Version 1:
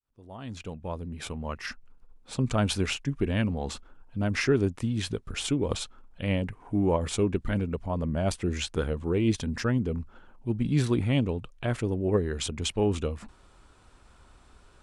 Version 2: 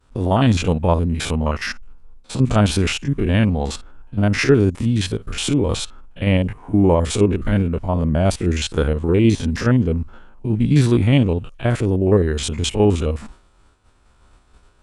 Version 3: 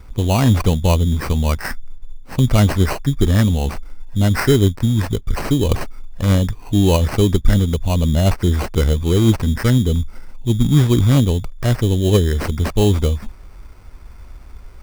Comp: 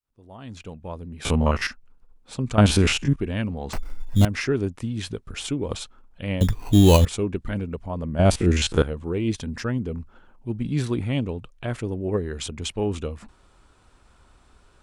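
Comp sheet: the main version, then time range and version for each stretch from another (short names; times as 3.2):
1
1.25–1.67 from 2
2.58–3.16 from 2
3.73–4.25 from 3
6.41–7.05 from 3
8.19–8.82 from 2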